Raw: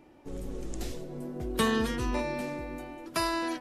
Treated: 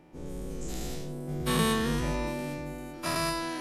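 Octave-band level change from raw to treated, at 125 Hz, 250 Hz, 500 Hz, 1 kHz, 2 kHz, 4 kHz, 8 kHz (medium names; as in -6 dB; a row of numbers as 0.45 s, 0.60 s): +5.5 dB, +0.5 dB, -0.5 dB, 0.0 dB, 0.0 dB, +2.5 dB, +4.0 dB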